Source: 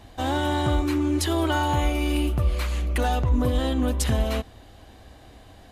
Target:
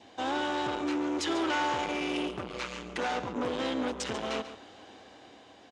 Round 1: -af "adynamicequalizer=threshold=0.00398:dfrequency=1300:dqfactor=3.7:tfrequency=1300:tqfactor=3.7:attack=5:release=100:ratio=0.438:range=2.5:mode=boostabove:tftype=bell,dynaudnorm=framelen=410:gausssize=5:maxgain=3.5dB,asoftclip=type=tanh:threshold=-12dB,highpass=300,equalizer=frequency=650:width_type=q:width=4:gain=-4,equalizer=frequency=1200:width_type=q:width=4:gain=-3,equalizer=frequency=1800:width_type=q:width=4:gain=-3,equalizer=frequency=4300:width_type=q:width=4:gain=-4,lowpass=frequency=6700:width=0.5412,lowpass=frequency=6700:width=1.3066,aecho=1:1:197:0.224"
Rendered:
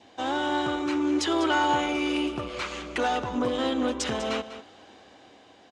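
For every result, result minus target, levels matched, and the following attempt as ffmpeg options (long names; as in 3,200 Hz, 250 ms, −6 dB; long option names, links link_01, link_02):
soft clipping: distortion −12 dB; echo 56 ms late
-af "adynamicequalizer=threshold=0.00398:dfrequency=1300:dqfactor=3.7:tfrequency=1300:tqfactor=3.7:attack=5:release=100:ratio=0.438:range=2.5:mode=boostabove:tftype=bell,dynaudnorm=framelen=410:gausssize=5:maxgain=3.5dB,asoftclip=type=tanh:threshold=-23.5dB,highpass=300,equalizer=frequency=650:width_type=q:width=4:gain=-4,equalizer=frequency=1200:width_type=q:width=4:gain=-3,equalizer=frequency=1800:width_type=q:width=4:gain=-3,equalizer=frequency=4300:width_type=q:width=4:gain=-4,lowpass=frequency=6700:width=0.5412,lowpass=frequency=6700:width=1.3066,aecho=1:1:197:0.224"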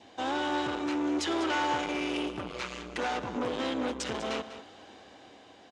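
echo 56 ms late
-af "adynamicequalizer=threshold=0.00398:dfrequency=1300:dqfactor=3.7:tfrequency=1300:tqfactor=3.7:attack=5:release=100:ratio=0.438:range=2.5:mode=boostabove:tftype=bell,dynaudnorm=framelen=410:gausssize=5:maxgain=3.5dB,asoftclip=type=tanh:threshold=-23.5dB,highpass=300,equalizer=frequency=650:width_type=q:width=4:gain=-4,equalizer=frequency=1200:width_type=q:width=4:gain=-3,equalizer=frequency=1800:width_type=q:width=4:gain=-3,equalizer=frequency=4300:width_type=q:width=4:gain=-4,lowpass=frequency=6700:width=0.5412,lowpass=frequency=6700:width=1.3066,aecho=1:1:141:0.224"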